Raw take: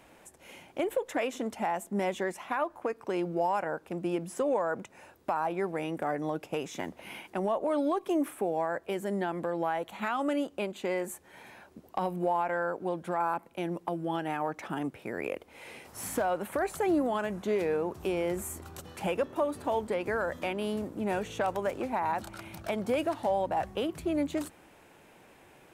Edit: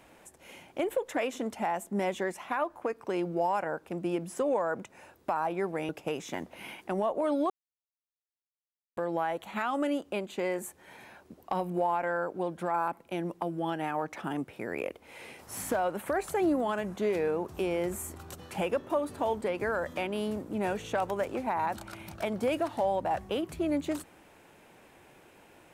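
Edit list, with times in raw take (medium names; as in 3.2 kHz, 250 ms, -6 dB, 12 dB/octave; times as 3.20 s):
5.89–6.35 s: delete
7.96–9.43 s: mute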